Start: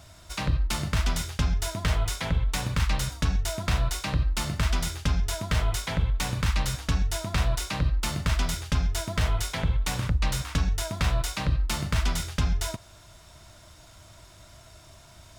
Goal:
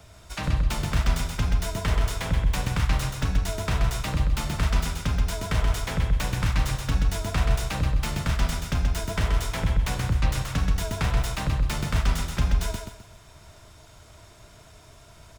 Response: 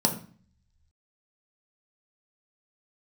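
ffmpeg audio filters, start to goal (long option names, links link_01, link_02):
-filter_complex "[0:a]highshelf=frequency=2800:gain=-2.5,acrossover=split=170|730|5900[link_01][link_02][link_03][link_04];[link_04]aeval=exprs='(mod(44.7*val(0)+1,2)-1)/44.7':channel_layout=same[link_05];[link_01][link_02][link_03][link_05]amix=inputs=4:normalize=0,asplit=2[link_06][link_07];[link_07]asetrate=29433,aresample=44100,atempo=1.49831,volume=-8dB[link_08];[link_06][link_08]amix=inputs=2:normalize=0,equalizer=frequency=4200:width_type=o:width=0.77:gain=-2,aecho=1:1:129|258|387|516:0.562|0.174|0.054|0.0168"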